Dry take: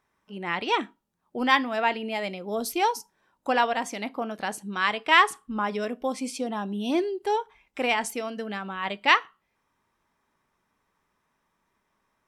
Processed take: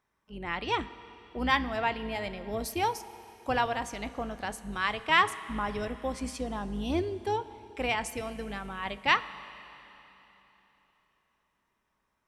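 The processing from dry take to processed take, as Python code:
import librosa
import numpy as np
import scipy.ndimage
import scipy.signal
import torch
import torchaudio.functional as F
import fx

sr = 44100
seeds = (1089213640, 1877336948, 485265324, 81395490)

y = fx.octave_divider(x, sr, octaves=2, level_db=-3.0)
y = fx.rev_schroeder(y, sr, rt60_s=3.5, comb_ms=28, drr_db=14.5)
y = y * 10.0 ** (-5.0 / 20.0)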